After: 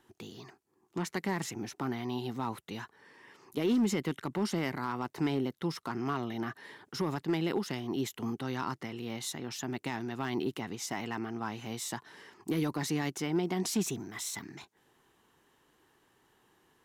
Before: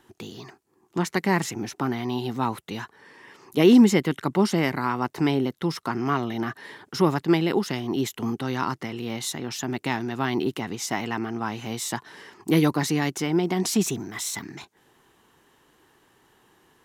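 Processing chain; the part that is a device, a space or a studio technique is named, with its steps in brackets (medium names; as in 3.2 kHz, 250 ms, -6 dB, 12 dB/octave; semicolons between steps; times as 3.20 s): limiter into clipper (peak limiter -13.5 dBFS, peak gain reduction 7 dB; hard clipper -15.5 dBFS, distortion -25 dB); trim -7.5 dB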